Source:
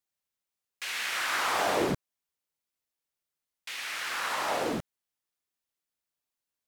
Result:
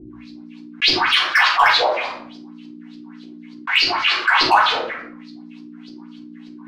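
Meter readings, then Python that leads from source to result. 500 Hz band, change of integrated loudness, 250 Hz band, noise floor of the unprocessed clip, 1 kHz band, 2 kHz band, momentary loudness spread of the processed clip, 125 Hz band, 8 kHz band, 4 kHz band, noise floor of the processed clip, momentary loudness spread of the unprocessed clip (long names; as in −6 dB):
+7.5 dB, +14.5 dB, +7.0 dB, below −85 dBFS, +15.0 dB, +15.5 dB, 15 LU, 0.0 dB, 0.0 dB, +18.5 dB, −40 dBFS, 11 LU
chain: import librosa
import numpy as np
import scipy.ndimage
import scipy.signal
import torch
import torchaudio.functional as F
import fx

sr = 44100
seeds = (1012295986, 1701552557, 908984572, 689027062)

y = fx.peak_eq(x, sr, hz=6400.0, db=5.0, octaves=0.41)
y = y + 10.0 ** (-14.0 / 20.0) * np.pad(y, (int(115 * sr / 1000.0), 0))[:len(y)]
y = 10.0 ** (-18.5 / 20.0) * np.tanh(y / 10.0 ** (-18.5 / 20.0))
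y = fx.filter_lfo_highpass(y, sr, shape='sine', hz=4.8, low_hz=830.0, high_hz=5000.0, q=5.7)
y = fx.add_hum(y, sr, base_hz=60, snr_db=30)
y = scipy.signal.sosfilt(scipy.signal.butter(2, 82.0, 'highpass', fs=sr, output='sos'), y)
y = fx.filter_lfo_lowpass(y, sr, shape='saw_up', hz=3.4, low_hz=330.0, high_hz=4900.0, q=7.4)
y = fx.low_shelf(y, sr, hz=240.0, db=-5.5)
y = np.clip(y, -10.0 ** (-7.5 / 20.0), 10.0 ** (-7.5 / 20.0))
y = fx.hum_notches(y, sr, base_hz=60, count=2)
y = fx.room_shoebox(y, sr, seeds[0], volume_m3=270.0, walls='furnished', distance_m=5.5)
y = fx.env_flatten(y, sr, amount_pct=50)
y = F.gain(torch.from_numpy(y), -8.5).numpy()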